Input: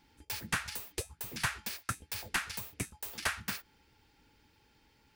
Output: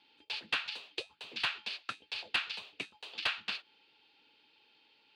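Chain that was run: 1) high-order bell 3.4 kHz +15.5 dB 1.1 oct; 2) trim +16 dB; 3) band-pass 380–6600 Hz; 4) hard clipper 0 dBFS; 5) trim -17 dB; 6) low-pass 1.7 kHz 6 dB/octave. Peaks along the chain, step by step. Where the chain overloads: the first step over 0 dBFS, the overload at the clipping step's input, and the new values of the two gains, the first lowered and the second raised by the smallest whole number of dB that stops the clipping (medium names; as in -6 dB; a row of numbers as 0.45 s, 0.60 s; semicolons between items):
-7.5 dBFS, +8.5 dBFS, +8.0 dBFS, 0.0 dBFS, -17.0 dBFS, -20.0 dBFS; step 2, 8.0 dB; step 2 +8 dB, step 5 -9 dB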